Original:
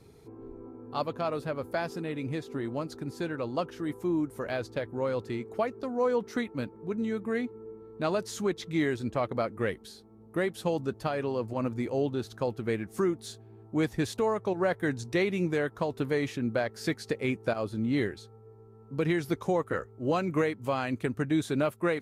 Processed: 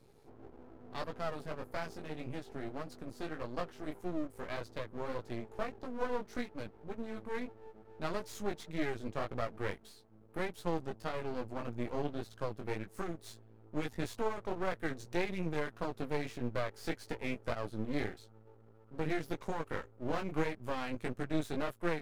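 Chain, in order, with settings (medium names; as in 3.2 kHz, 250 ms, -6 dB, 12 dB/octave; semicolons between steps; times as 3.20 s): chorus 1.7 Hz, delay 16 ms, depth 4.2 ms; half-wave rectifier; trim -1.5 dB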